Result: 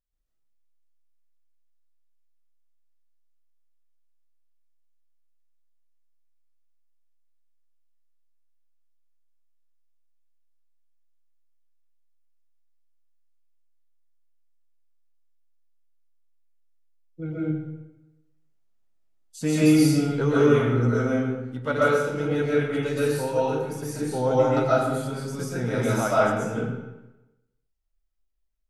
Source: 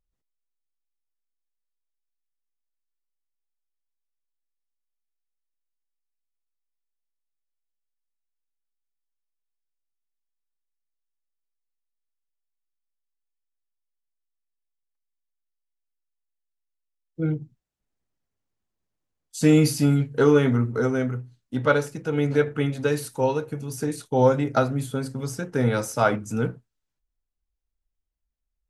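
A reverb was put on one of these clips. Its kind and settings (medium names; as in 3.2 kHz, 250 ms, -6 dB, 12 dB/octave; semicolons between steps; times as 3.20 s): algorithmic reverb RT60 1 s, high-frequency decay 0.8×, pre-delay 90 ms, DRR -8 dB; trim -8 dB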